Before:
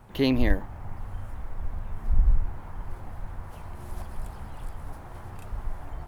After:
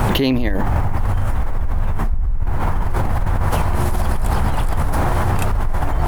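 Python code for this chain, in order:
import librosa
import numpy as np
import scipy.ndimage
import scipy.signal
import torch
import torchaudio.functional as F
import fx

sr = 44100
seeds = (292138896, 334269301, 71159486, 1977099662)

y = fx.env_flatten(x, sr, amount_pct=100)
y = y * librosa.db_to_amplitude(-2.5)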